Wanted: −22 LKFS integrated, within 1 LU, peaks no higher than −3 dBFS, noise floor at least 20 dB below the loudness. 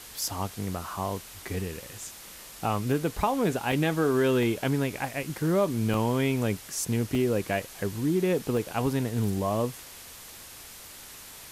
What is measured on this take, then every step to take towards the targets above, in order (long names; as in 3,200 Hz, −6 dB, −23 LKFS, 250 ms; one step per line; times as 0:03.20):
number of dropouts 8; longest dropout 1.4 ms; background noise floor −46 dBFS; target noise floor −48 dBFS; integrated loudness −28.0 LKFS; sample peak −12.5 dBFS; target loudness −22.0 LKFS
→ repair the gap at 0:00.18/0:02.94/0:03.72/0:04.43/0:05.23/0:05.94/0:07.15/0:08.57, 1.4 ms
broadband denoise 6 dB, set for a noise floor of −46 dBFS
level +6 dB